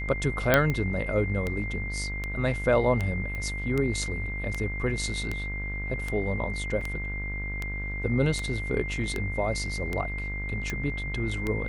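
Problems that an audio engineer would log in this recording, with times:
mains buzz 50 Hz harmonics 34 −34 dBFS
scratch tick 78 rpm −16 dBFS
whistle 2,100 Hz −34 dBFS
0:00.54: click −5 dBFS
0:03.35: click −23 dBFS
0:06.81: drop-out 4 ms

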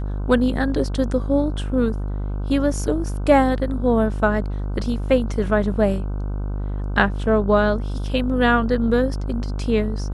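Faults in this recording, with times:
mains buzz 50 Hz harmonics 31 −25 dBFS

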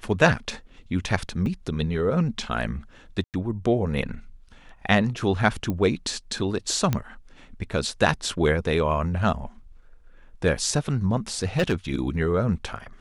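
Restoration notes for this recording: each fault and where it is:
0:01.46: drop-out 2.4 ms
0:03.24–0:03.34: drop-out 98 ms
0:05.70: click −16 dBFS
0:06.93: click −10 dBFS
0:11.43–0:11.96: clipping −16 dBFS

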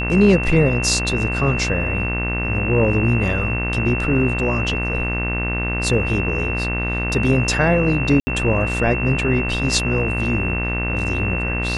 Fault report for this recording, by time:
mains buzz 60 Hz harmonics 38 −24 dBFS
whistle 2,700 Hz −24 dBFS
0:08.20–0:08.27: drop-out 70 ms

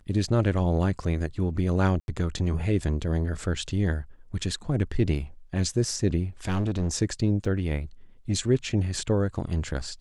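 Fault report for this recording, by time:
0:02.00–0:02.08: drop-out 81 ms
0:06.47–0:06.93: clipping −21.5 dBFS
0:07.45: drop-out 3.2 ms

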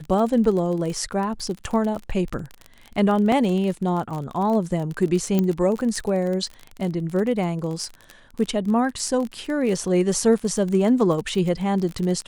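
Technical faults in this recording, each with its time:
surface crackle 35 per second −27 dBFS
0:03.32: drop-out 3.1 ms
0:05.39: click −9 dBFS

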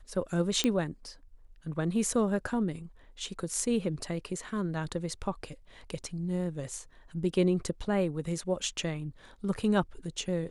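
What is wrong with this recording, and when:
0:00.64: click −13 dBFS

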